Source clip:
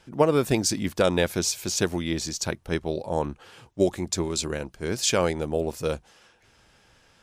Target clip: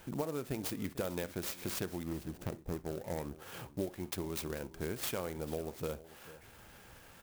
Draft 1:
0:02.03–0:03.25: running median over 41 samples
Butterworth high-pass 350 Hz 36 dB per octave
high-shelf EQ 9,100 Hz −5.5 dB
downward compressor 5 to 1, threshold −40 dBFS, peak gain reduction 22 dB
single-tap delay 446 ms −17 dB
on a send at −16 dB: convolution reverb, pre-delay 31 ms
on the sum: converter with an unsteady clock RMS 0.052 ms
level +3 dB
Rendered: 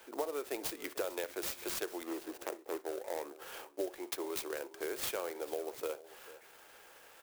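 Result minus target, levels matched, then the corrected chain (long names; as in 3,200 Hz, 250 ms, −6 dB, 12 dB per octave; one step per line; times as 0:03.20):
250 Hz band −5.0 dB
0:02.03–0:03.25: running median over 41 samples
high-shelf EQ 9,100 Hz −5.5 dB
downward compressor 5 to 1, threshold −40 dBFS, peak gain reduction 22.5 dB
single-tap delay 446 ms −17 dB
on a send at −16 dB: convolution reverb, pre-delay 31 ms
on the sum: converter with an unsteady clock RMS 0.052 ms
level +3 dB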